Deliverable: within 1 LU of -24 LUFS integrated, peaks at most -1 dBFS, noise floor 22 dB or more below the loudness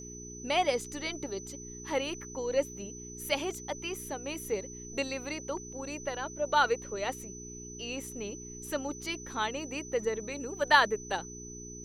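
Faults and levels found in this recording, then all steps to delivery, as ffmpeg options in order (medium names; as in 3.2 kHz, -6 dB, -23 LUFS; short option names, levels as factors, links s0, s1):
hum 60 Hz; highest harmonic 420 Hz; hum level -44 dBFS; steady tone 6 kHz; tone level -45 dBFS; loudness -33.0 LUFS; peak level -8.5 dBFS; loudness target -24.0 LUFS
-> -af "bandreject=f=60:t=h:w=4,bandreject=f=120:t=h:w=4,bandreject=f=180:t=h:w=4,bandreject=f=240:t=h:w=4,bandreject=f=300:t=h:w=4,bandreject=f=360:t=h:w=4,bandreject=f=420:t=h:w=4"
-af "bandreject=f=6000:w=30"
-af "volume=2.82,alimiter=limit=0.891:level=0:latency=1"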